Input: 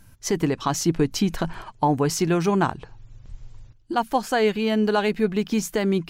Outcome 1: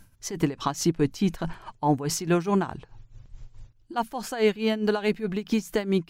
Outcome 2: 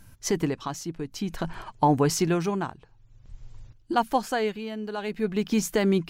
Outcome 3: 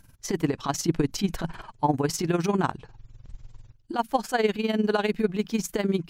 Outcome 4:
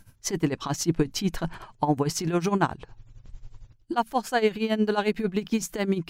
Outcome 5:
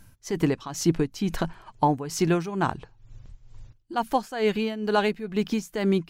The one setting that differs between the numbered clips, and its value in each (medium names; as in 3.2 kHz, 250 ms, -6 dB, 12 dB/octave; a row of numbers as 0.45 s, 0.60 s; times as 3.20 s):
tremolo, rate: 4.7 Hz, 0.52 Hz, 20 Hz, 11 Hz, 2.2 Hz